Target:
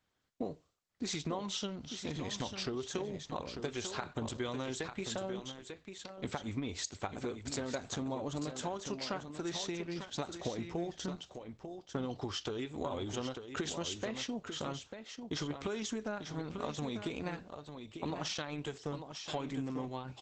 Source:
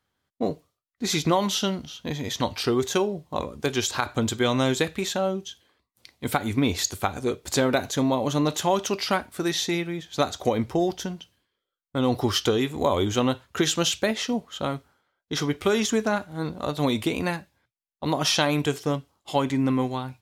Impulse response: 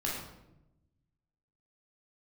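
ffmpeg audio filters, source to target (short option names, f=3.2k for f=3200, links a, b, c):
-filter_complex "[0:a]asplit=3[a][b][c];[a]afade=t=out:st=8.11:d=0.02[d];[b]equalizer=f=2.7k:t=o:w=0.85:g=-3,afade=t=in:st=8.11:d=0.02,afade=t=out:st=9.08:d=0.02[e];[c]afade=t=in:st=9.08:d=0.02[f];[d][e][f]amix=inputs=3:normalize=0,acompressor=threshold=-32dB:ratio=5,aecho=1:1:895:0.398,volume=-3dB" -ar 48000 -c:a libopus -b:a 12k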